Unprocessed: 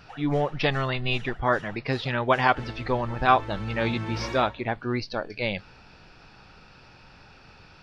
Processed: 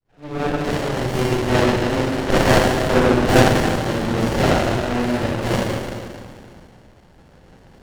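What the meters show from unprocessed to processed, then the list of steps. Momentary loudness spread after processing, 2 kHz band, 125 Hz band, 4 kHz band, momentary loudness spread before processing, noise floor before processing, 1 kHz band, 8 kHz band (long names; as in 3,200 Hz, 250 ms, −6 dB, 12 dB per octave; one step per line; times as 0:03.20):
11 LU, +5.0 dB, +9.0 dB, +7.0 dB, 8 LU, −52 dBFS, +3.5 dB, can't be measured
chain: fade in at the beginning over 0.69 s
sample-and-hold tremolo 3.5 Hz
harmonic generator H 8 −7 dB, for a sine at −7.5 dBFS
four-comb reverb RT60 2.1 s, combs from 33 ms, DRR −8.5 dB
windowed peak hold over 33 samples
level +1 dB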